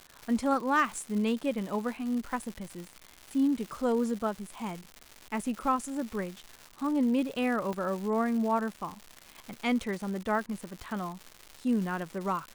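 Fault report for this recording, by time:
surface crackle 310 per second −36 dBFS
0:07.73: click −22 dBFS

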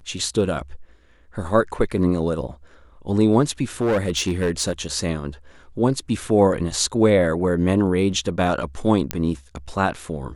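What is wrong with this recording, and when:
0:03.81–0:04.73: clipping −16 dBFS
0:09.11: click −5 dBFS

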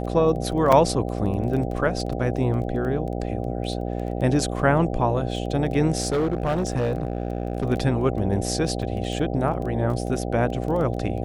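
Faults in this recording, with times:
mains buzz 60 Hz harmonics 13 −28 dBFS
surface crackle 12 per second −30 dBFS
0:00.72: drop-out 4.7 ms
0:06.02–0:07.65: clipping −18.5 dBFS
0:08.82–0:08.83: drop-out 5.5 ms

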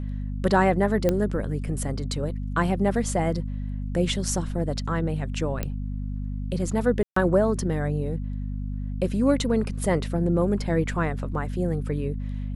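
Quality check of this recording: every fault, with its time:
mains hum 50 Hz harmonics 5 −30 dBFS
0:01.09: click −10 dBFS
0:05.63: click −13 dBFS
0:07.03–0:07.16: drop-out 134 ms

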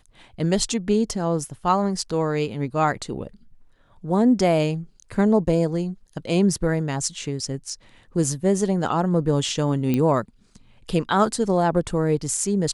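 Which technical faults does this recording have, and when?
0:09.94: click −11 dBFS

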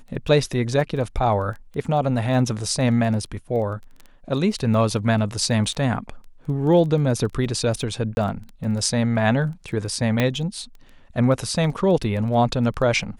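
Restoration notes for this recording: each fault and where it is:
surface crackle 11 per second −30 dBFS
0:08.15–0:08.17: drop-out 21 ms
0:10.20: click −7 dBFS

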